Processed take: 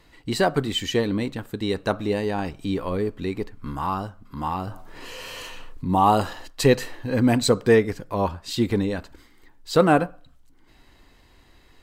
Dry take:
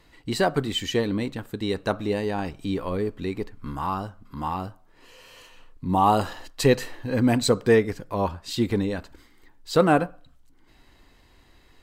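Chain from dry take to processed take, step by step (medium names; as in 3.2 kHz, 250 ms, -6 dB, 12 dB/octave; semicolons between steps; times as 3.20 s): 4.67–5.88 s: level flattener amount 50%; trim +1.5 dB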